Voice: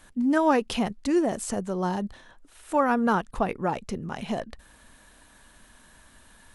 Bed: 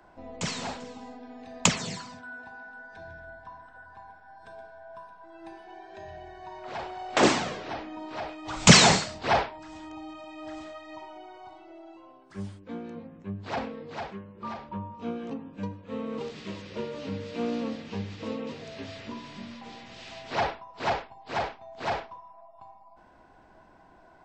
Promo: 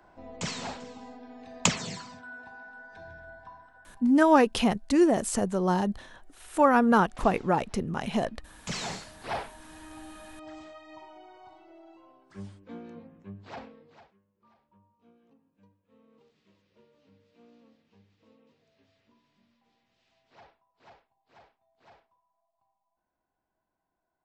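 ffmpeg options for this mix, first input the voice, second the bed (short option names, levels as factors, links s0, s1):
-filter_complex "[0:a]adelay=3850,volume=1.26[s0];[1:a]volume=7.5,afade=t=out:st=3.44:d=0.77:silence=0.0749894,afade=t=in:st=8.64:d=1.33:silence=0.105925,afade=t=out:st=12.99:d=1.15:silence=0.0707946[s1];[s0][s1]amix=inputs=2:normalize=0"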